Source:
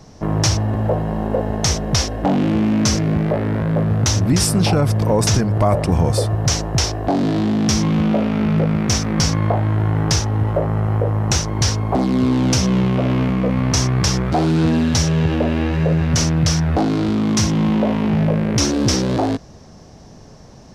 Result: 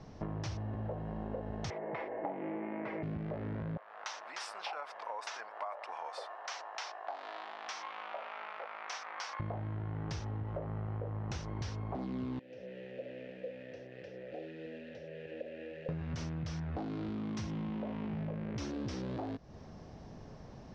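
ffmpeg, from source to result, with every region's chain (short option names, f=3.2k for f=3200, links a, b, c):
-filter_complex "[0:a]asettb=1/sr,asplit=3[a][b][c];[a]atrim=end=1.704[d];[b]atrim=start=1.7:end=3.03,asetpts=PTS-STARTPTS,afade=t=in:d=0.004:c=qsin,afade=t=out:st=1.326:d=0.004:c=qsin,highpass=350,equalizer=f=400:t=q:w=4:g=8,equalizer=f=600:t=q:w=4:g=6,equalizer=f=880:t=q:w=4:g=7,equalizer=f=1.4k:t=q:w=4:g=-3,equalizer=f=2.1k:t=q:w=4:g=9,lowpass=f=2.2k:w=0.5412,lowpass=f=2.2k:w=1.3066,aecho=1:1:6.1:0.46,atrim=end_sample=58653[e];[c]atrim=start=3.026[f];[d][e]acrossfade=d=0.004:c1=hsin:c2=qsin[g];[g][f]acrossfade=d=0.004:c1=qsin:c2=hsin,asettb=1/sr,asplit=3[h][i][j];[h]atrim=end=3.774[k];[i]atrim=start=3.77:end=9.4,asetpts=PTS-STARTPTS,afade=t=in:d=0.004:c=qsin,afade=t=out:st=5.626:d=0.004:c=qsin,highpass=f=820:w=0.5412,highpass=f=820:w=1.3066,highshelf=f=2.1k:g=-8.5[l];[j]atrim=start=9.396[m];[k][l]acrossfade=d=0.004:c1=hsin:c2=qsin[n];[n][m]acrossfade=d=0.004:c1=qsin:c2=hsin,asettb=1/sr,asplit=3[o][p][q];[o]atrim=end=12.394[r];[p]atrim=start=12.39:end=15.89,asetpts=PTS-STARTPTS,afade=t=in:d=0.004:c=qsin,afade=t=out:st=3.496:d=0.004:c=qsin,acrusher=bits=5:dc=4:mix=0:aa=0.000001,acrossover=split=100|730|1800[s][t][u][v];[s]acompressor=threshold=-33dB:ratio=3[w];[t]acompressor=threshold=-20dB:ratio=3[x];[u]acompressor=threshold=-45dB:ratio=3[y];[v]acompressor=threshold=-32dB:ratio=3[z];[w][x][y][z]amix=inputs=4:normalize=0,asplit=3[aa][ab][ac];[aa]bandpass=f=530:t=q:w=8,volume=0dB[ad];[ab]bandpass=f=1.84k:t=q:w=8,volume=-6dB[ae];[ac]bandpass=f=2.48k:t=q:w=8,volume=-9dB[af];[ad][ae][af]amix=inputs=3:normalize=0[ag];[q]atrim=start=15.886[ah];[r][ag]acrossfade=d=0.004:c1=hsin:c2=qsin[ai];[ai][ah]acrossfade=d=0.004:c1=qsin:c2=hsin,lowpass=3.5k,acompressor=threshold=-29dB:ratio=6,volume=-8dB"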